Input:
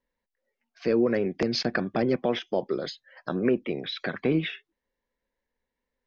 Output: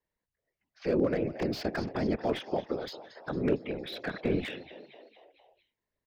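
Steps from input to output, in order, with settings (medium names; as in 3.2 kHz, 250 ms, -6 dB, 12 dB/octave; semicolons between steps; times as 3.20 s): whisper effect; frequency-shifting echo 228 ms, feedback 57%, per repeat +70 Hz, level -16 dB; slew-rate limiter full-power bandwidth 80 Hz; trim -4.5 dB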